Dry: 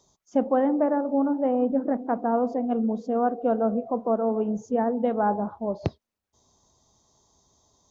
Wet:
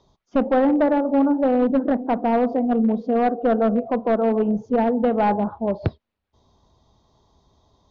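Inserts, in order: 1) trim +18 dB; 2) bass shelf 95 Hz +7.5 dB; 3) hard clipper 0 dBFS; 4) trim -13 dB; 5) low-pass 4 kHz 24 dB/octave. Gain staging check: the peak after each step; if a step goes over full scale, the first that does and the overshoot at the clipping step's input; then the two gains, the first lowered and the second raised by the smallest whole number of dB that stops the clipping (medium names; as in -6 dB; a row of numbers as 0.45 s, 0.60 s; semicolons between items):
+7.5 dBFS, +8.0 dBFS, 0.0 dBFS, -13.0 dBFS, -12.5 dBFS; step 1, 8.0 dB; step 1 +10 dB, step 4 -5 dB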